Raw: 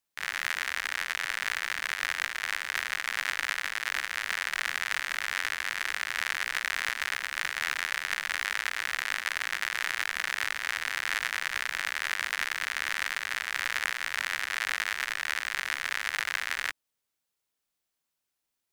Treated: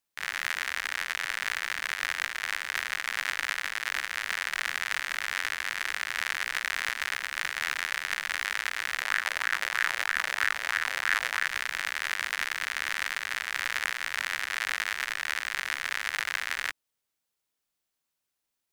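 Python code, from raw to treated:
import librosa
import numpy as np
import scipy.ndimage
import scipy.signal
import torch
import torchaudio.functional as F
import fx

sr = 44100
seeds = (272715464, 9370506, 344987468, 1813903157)

y = fx.bell_lfo(x, sr, hz=3.1, low_hz=510.0, high_hz=1700.0, db=8, at=(9.01, 11.46))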